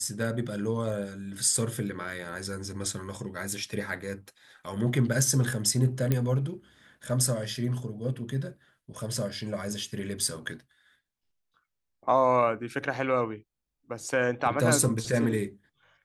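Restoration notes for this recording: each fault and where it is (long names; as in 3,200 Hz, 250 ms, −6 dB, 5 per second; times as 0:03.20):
0:06.12: click −12 dBFS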